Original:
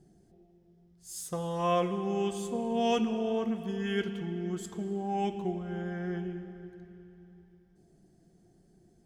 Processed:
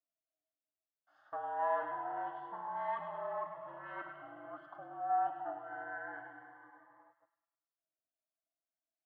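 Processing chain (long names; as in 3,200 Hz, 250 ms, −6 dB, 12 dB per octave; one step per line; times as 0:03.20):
noise gate −52 dBFS, range −12 dB
leveller curve on the samples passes 3
flanger 0.65 Hz, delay 3.1 ms, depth 6.3 ms, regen −74%
single-sideband voice off tune −52 Hz 590–2,200 Hz
phaser with its sweep stopped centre 1,000 Hz, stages 4
delay with a high-pass on its return 102 ms, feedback 50%, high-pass 1,700 Hz, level −6 dB
phaser whose notches keep moving one way rising 0.26 Hz
level +1.5 dB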